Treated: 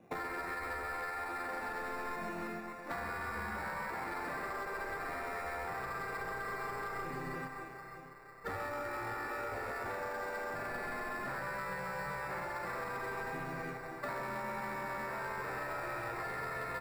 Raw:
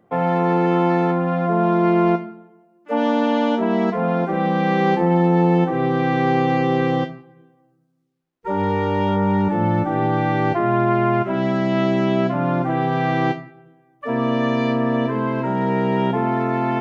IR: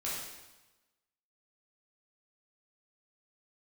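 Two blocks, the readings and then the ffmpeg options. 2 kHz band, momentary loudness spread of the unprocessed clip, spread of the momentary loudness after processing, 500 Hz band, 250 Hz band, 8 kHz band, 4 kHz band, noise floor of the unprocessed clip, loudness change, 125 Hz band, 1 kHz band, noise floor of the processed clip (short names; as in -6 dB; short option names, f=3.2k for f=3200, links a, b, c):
-9.5 dB, 5 LU, 3 LU, -21.5 dB, -29.5 dB, n/a, -17.5 dB, -60 dBFS, -20.0 dB, -27.5 dB, -17.5 dB, -48 dBFS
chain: -filter_complex "[0:a]acrossover=split=430|1100[a][b][c];[b]asoftclip=type=hard:threshold=-29dB[d];[a][d][c]amix=inputs=3:normalize=0,afftfilt=real='re*lt(hypot(re,im),0.2)':imag='im*lt(hypot(re,im),0.2)':win_size=1024:overlap=0.75,acrusher=samples=14:mix=1:aa=0.000001,highshelf=f=2.6k:t=q:w=1.5:g=-9.5,asplit=2[e][f];[f]aecho=0:1:130|312|566.8|923.5|1423:0.631|0.398|0.251|0.158|0.1[g];[e][g]amix=inputs=2:normalize=0,agate=range=-7dB:threshold=-38dB:ratio=16:detection=peak,acompressor=threshold=-39dB:ratio=20,asoftclip=type=tanh:threshold=-33.5dB,volume=4dB"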